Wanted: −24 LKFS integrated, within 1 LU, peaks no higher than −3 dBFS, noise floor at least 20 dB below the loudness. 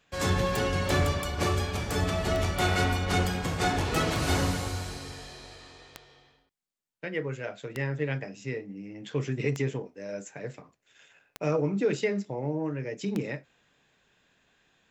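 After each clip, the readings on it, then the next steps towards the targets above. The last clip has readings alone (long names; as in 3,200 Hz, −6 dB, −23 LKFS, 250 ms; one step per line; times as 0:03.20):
number of clicks 8; integrated loudness −29.5 LKFS; sample peak −14.5 dBFS; target loudness −24.0 LKFS
→ click removal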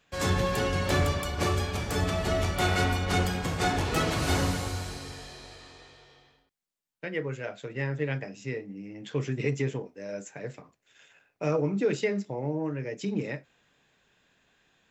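number of clicks 0; integrated loudness −29.5 LKFS; sample peak −13.5 dBFS; target loudness −24.0 LKFS
→ level +5.5 dB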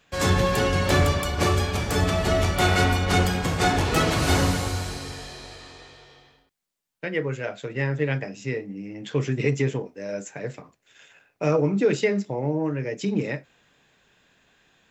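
integrated loudness −24.0 LKFS; sample peak −8.0 dBFS; background noise floor −67 dBFS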